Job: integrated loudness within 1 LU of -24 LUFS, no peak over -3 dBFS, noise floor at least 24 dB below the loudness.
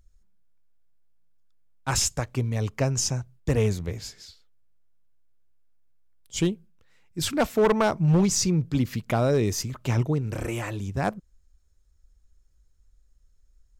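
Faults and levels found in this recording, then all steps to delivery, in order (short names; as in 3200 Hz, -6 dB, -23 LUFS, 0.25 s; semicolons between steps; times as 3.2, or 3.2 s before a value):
clipped 0.7%; flat tops at -15.5 dBFS; loudness -25.5 LUFS; peak -15.5 dBFS; loudness target -24.0 LUFS
-> clip repair -15.5 dBFS; gain +1.5 dB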